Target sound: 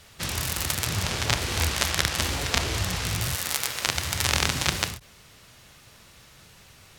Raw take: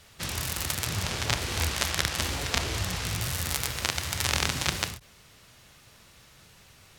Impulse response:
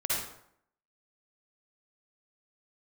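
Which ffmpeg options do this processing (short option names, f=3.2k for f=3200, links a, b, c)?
-filter_complex "[0:a]asettb=1/sr,asplit=3[a][b][c];[a]atrim=end=3.354[d];[b]atrim=start=3.35:end=3.87,asetpts=PTS-STARTPTS,afade=t=in:d=0.004:c=qsin,afade=t=out:st=0.516:d=0.004:c=qsin,highpass=f=440:p=1[e];[c]atrim=start=3.866[f];[d][e]acrossfade=d=0.004:c1=hsin:c2=qsin[g];[g][f]acrossfade=d=0.004:c1=qsin:c2=hsin,volume=3dB"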